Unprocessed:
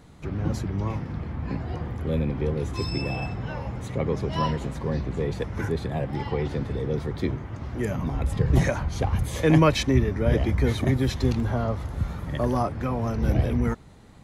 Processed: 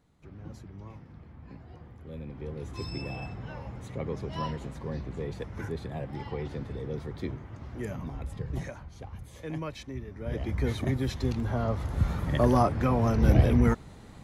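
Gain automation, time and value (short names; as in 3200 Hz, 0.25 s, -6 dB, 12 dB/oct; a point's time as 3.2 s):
2.06 s -17 dB
2.82 s -8 dB
7.92 s -8 dB
8.95 s -18 dB
10.03 s -18 dB
10.59 s -6 dB
11.34 s -6 dB
12.09 s +2 dB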